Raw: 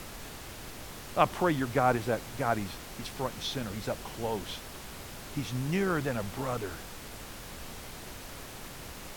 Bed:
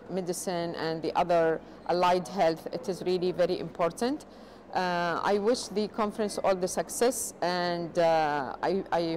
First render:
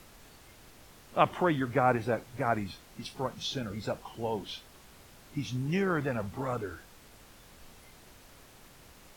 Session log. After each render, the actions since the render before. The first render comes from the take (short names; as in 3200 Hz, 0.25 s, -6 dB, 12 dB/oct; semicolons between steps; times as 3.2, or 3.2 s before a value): noise print and reduce 11 dB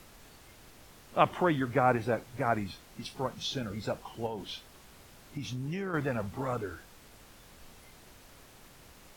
4.26–5.94 compressor, threshold -32 dBFS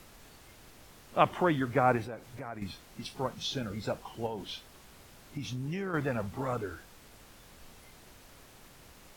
2.05–2.62 compressor 2.5:1, threshold -42 dBFS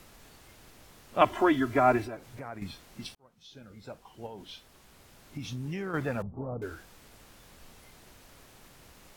1.21–2.17 comb 3 ms, depth 99%; 3.15–5.54 fade in; 6.22–6.62 Gaussian blur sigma 11 samples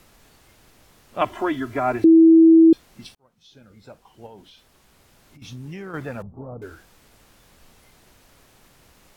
2.04–2.73 bleep 326 Hz -7.5 dBFS; 4.4–5.42 compressor, threshold -46 dBFS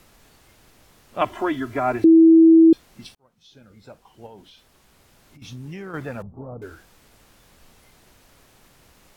nothing audible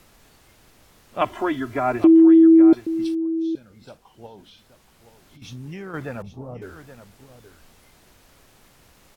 echo 0.824 s -13 dB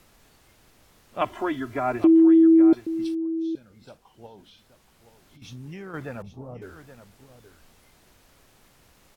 gain -3.5 dB